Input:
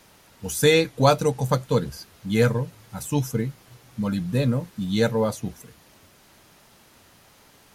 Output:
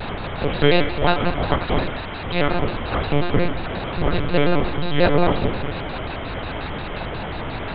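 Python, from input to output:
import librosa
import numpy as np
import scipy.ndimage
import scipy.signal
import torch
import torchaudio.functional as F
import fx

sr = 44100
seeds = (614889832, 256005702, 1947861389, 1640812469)

p1 = fx.bin_compress(x, sr, power=0.4)
p2 = fx.low_shelf(p1, sr, hz=370.0, db=-9.5, at=(0.82, 2.62))
p3 = fx.lpc_monotone(p2, sr, seeds[0], pitch_hz=160.0, order=8)
p4 = p3 + fx.echo_feedback(p3, sr, ms=84, feedback_pct=54, wet_db=-11, dry=0)
y = fx.vibrato_shape(p4, sr, shape='square', rate_hz=5.6, depth_cents=160.0)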